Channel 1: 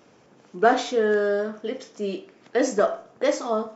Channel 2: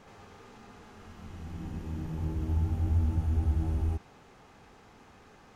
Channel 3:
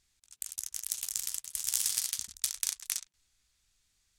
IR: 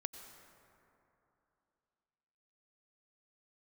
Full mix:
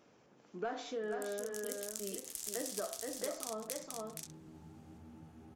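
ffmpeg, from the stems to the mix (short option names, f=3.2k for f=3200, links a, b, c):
-filter_complex "[0:a]asoftclip=type=tanh:threshold=-6dB,volume=-10dB,asplit=2[a][b];[b]volume=-6dB[c];[1:a]highpass=f=140:w=0.5412,highpass=f=140:w=1.3066,adelay=2050,volume=-16dB[d];[2:a]adelay=800,volume=-4dB,asplit=2[e][f];[f]volume=-7.5dB[g];[c][g]amix=inputs=2:normalize=0,aecho=0:1:473:1[h];[a][d][e][h]amix=inputs=4:normalize=0,acompressor=threshold=-39dB:ratio=3"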